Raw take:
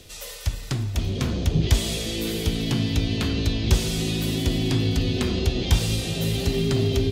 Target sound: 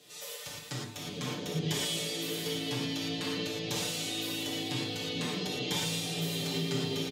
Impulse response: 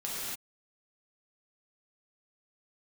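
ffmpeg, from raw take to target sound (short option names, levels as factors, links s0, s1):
-filter_complex "[0:a]highpass=250,aecho=1:1:6.7:0.8[s0];[1:a]atrim=start_sample=2205,afade=t=out:st=0.17:d=0.01,atrim=end_sample=7938[s1];[s0][s1]afir=irnorm=-1:irlink=0,volume=0.376"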